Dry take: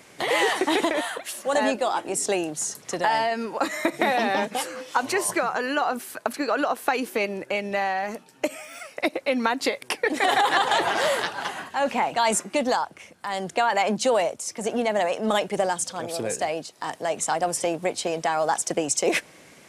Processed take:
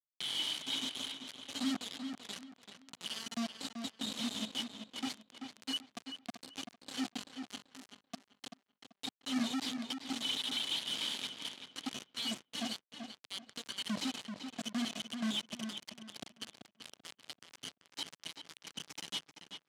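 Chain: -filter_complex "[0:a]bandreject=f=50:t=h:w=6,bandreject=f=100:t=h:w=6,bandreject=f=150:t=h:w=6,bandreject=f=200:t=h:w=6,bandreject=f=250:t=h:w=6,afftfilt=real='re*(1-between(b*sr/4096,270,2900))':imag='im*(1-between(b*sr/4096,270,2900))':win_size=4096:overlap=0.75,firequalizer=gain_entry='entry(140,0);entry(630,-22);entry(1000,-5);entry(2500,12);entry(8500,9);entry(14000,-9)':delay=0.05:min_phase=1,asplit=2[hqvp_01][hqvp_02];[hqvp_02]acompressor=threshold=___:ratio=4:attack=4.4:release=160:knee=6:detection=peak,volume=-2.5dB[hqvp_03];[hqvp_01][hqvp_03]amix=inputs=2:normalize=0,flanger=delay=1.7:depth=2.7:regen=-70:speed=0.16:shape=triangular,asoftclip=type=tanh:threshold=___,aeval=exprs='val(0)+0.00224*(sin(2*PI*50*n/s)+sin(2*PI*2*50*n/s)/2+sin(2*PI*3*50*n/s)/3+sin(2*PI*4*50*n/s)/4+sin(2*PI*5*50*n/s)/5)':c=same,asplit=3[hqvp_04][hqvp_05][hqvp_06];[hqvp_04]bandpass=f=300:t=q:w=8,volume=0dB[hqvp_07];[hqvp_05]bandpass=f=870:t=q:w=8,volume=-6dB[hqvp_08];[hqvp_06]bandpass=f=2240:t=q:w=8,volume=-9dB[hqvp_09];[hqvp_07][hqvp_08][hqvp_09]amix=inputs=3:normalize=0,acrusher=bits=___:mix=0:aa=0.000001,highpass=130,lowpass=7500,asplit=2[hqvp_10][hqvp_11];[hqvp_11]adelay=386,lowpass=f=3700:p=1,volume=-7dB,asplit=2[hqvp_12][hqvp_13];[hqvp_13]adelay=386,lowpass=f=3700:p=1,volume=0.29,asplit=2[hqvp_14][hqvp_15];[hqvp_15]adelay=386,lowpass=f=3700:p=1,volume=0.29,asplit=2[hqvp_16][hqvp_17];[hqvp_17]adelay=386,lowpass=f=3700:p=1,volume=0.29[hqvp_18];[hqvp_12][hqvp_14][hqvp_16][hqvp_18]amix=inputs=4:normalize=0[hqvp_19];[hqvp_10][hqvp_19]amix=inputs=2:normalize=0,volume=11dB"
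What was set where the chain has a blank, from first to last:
-34dB, -19dB, 7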